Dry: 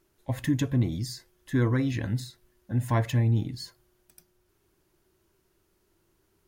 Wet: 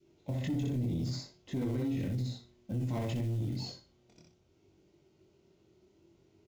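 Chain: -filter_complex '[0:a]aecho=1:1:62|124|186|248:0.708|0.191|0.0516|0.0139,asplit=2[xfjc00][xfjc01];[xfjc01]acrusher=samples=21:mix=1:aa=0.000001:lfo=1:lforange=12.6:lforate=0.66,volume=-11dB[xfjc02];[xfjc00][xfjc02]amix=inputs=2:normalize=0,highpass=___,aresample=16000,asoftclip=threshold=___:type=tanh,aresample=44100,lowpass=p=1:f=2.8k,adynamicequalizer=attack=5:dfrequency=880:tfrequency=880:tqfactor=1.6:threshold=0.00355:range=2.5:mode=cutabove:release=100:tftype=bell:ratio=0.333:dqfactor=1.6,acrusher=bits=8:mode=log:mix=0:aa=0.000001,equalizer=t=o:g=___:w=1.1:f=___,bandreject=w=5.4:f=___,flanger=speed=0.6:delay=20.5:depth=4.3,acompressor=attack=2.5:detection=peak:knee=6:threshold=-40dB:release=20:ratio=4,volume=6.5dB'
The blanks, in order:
91, -18.5dB, -11, 1.2k, 1.7k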